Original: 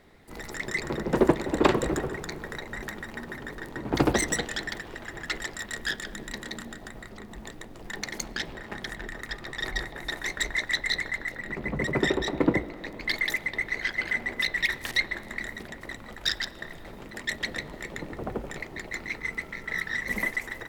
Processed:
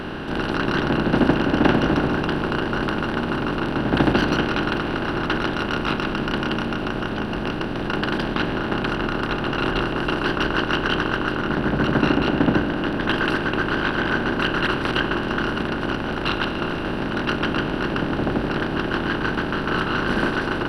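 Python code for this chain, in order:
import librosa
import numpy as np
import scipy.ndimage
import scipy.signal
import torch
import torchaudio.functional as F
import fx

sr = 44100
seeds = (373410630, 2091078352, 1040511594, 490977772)

y = fx.bin_compress(x, sr, power=0.4)
y = scipy.signal.lfilter(np.full(5, 1.0 / 5), 1.0, y)
y = fx.formant_shift(y, sr, semitones=-5)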